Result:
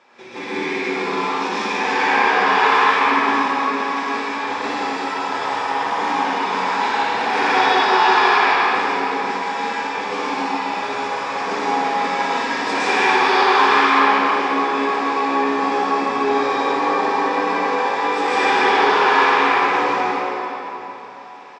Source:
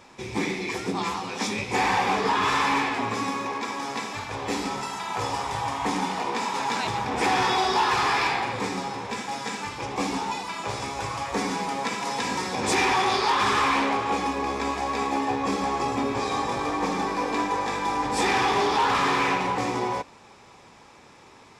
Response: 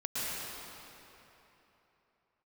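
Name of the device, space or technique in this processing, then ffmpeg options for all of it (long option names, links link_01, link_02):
station announcement: -filter_complex "[0:a]highpass=340,lowpass=4300,equalizer=frequency=1600:width_type=o:width=0.32:gain=4,aecho=1:1:58.31|154.5:0.562|0.355[link_01];[1:a]atrim=start_sample=2205[link_02];[link_01][link_02]afir=irnorm=-1:irlink=0"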